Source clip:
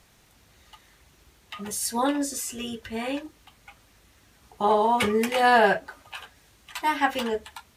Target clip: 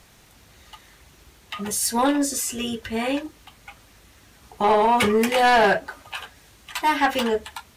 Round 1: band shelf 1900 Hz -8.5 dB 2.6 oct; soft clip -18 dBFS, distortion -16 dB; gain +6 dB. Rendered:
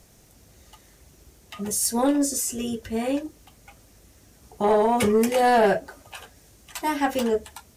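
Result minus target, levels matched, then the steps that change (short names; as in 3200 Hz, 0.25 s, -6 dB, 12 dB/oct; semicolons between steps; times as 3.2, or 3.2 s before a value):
2000 Hz band -5.5 dB
remove: band shelf 1900 Hz -8.5 dB 2.6 oct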